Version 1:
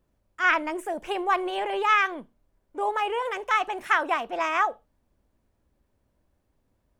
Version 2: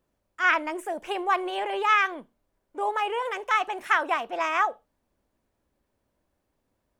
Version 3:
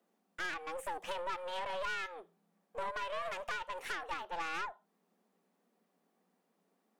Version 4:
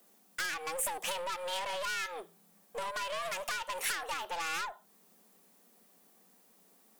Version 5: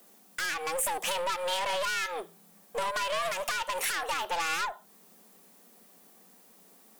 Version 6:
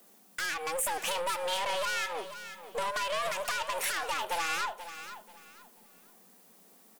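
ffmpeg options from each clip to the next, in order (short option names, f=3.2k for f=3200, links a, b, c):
-af "lowshelf=f=170:g=-9.5"
-af "acompressor=threshold=-34dB:ratio=5,afreqshift=170,aeval=exprs='(tanh(50.1*val(0)+0.65)-tanh(0.65))/50.1':c=same,volume=1.5dB"
-af "acompressor=threshold=-40dB:ratio=6,asoftclip=type=tanh:threshold=-37dB,crystalizer=i=4:c=0,volume=7dB"
-af "alimiter=level_in=1.5dB:limit=-24dB:level=0:latency=1:release=62,volume=-1.5dB,volume=6.5dB"
-af "aecho=1:1:485|970|1455:0.251|0.0678|0.0183,volume=-1.5dB"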